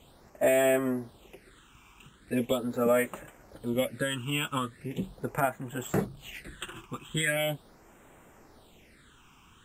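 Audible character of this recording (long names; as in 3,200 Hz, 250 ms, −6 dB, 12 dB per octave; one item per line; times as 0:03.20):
phaser sweep stages 8, 0.4 Hz, lowest notch 550–4,500 Hz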